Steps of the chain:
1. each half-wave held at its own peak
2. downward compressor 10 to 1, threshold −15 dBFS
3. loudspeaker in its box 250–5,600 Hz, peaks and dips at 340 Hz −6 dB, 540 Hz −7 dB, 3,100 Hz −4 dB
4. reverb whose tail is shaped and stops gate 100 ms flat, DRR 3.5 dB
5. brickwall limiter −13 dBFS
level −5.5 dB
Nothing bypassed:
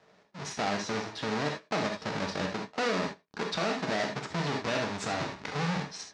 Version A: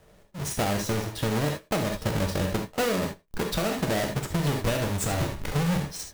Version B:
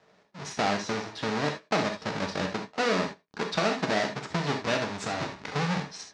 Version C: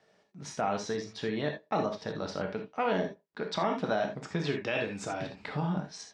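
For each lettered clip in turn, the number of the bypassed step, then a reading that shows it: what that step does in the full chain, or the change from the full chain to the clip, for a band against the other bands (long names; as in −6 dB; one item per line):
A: 3, change in crest factor −5.0 dB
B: 5, change in crest factor +4.5 dB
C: 1, distortion level −4 dB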